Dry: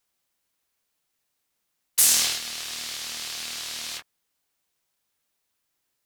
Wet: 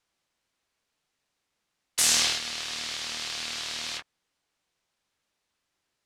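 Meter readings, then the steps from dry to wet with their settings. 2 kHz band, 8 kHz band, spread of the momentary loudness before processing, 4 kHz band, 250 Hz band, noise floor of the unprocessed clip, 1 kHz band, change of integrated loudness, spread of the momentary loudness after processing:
+1.5 dB, -4.0 dB, 15 LU, +0.5 dB, +2.5 dB, -78 dBFS, +2.0 dB, -3.0 dB, 13 LU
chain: air absorption 66 m; gain +2.5 dB

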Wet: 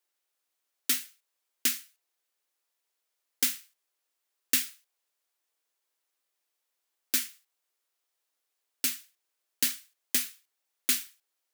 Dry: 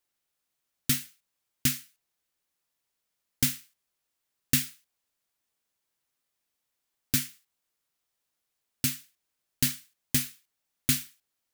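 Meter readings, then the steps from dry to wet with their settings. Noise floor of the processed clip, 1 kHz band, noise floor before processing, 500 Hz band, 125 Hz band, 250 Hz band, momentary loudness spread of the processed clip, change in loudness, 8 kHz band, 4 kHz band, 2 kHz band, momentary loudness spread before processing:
-83 dBFS, 0.0 dB, -83 dBFS, -1.0 dB, under -25 dB, -10.0 dB, 14 LU, -0.5 dB, 0.0 dB, 0.0 dB, 0.0 dB, 14 LU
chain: HPF 330 Hz 24 dB/oct

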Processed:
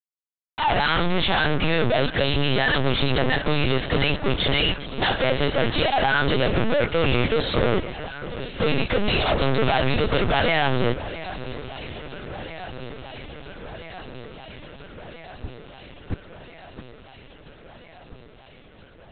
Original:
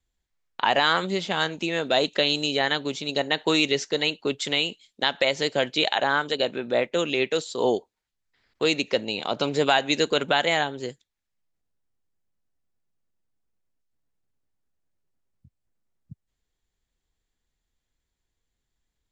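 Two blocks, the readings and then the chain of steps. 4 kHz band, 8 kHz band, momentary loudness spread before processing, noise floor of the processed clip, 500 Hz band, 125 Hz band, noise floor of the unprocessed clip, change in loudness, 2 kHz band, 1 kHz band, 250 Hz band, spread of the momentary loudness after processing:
0.0 dB, under -40 dB, 6 LU, -49 dBFS, +2.0 dB, +13.5 dB, -82 dBFS, +1.5 dB, +2.5 dB, +2.5 dB, +4.0 dB, 19 LU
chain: in parallel at -6.5 dB: hard clip -21 dBFS, distortion -8 dB; on the sum: compressor 6:1, threshold -23 dBFS, peak gain reduction 9.5 dB; frequency shift -20 Hz; fuzz box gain 44 dB, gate -50 dBFS; echo with dull and thin repeats by turns 0.669 s, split 2400 Hz, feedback 85%, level -14 dB; LPC vocoder at 8 kHz pitch kept; gain -5.5 dB

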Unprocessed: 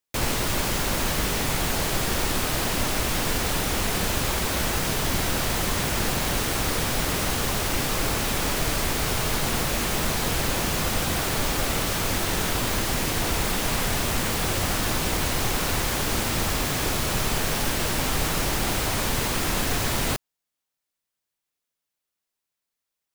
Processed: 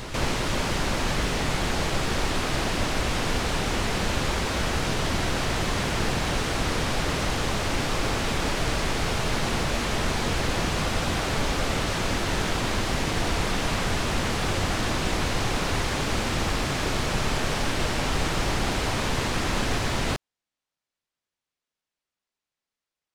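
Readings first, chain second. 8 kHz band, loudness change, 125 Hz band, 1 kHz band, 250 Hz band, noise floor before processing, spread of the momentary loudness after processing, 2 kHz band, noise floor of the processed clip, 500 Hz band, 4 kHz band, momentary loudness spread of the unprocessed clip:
-6.0 dB, -2.0 dB, +0.5 dB, 0.0 dB, +0.5 dB, -85 dBFS, 0 LU, 0.0 dB, under -85 dBFS, +0.5 dB, -1.5 dB, 0 LU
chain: air absorption 68 m; reverse echo 0.379 s -9.5 dB

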